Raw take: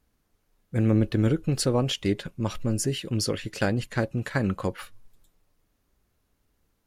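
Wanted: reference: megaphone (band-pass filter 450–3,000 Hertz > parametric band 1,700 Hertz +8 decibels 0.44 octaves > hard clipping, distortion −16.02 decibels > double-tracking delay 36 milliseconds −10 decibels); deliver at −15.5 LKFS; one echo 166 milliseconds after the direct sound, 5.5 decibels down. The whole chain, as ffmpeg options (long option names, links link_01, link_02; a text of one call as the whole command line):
ffmpeg -i in.wav -filter_complex "[0:a]highpass=450,lowpass=3000,equalizer=frequency=1700:width_type=o:width=0.44:gain=8,aecho=1:1:166:0.531,asoftclip=type=hard:threshold=-18.5dB,asplit=2[link_01][link_02];[link_02]adelay=36,volume=-10dB[link_03];[link_01][link_03]amix=inputs=2:normalize=0,volume=16dB" out.wav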